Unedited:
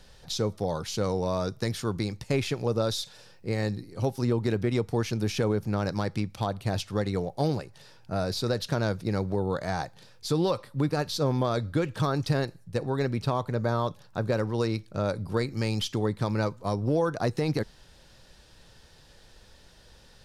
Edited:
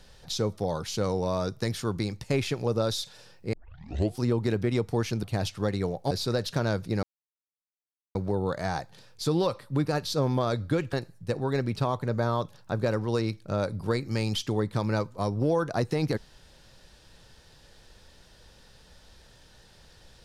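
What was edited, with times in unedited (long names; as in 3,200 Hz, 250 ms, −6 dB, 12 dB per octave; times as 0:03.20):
0:03.53: tape start 0.67 s
0:05.23–0:06.56: remove
0:07.44–0:08.27: remove
0:09.19: splice in silence 1.12 s
0:11.97–0:12.39: remove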